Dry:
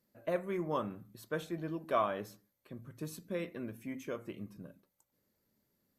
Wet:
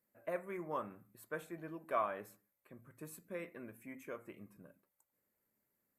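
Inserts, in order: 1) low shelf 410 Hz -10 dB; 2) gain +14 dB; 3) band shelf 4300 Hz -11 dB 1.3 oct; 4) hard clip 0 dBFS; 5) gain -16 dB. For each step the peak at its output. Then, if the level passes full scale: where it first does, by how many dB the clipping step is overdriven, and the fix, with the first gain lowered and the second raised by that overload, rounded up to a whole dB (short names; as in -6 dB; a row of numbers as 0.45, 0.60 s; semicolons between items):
-19.0, -5.0, -5.0, -5.0, -21.0 dBFS; no overload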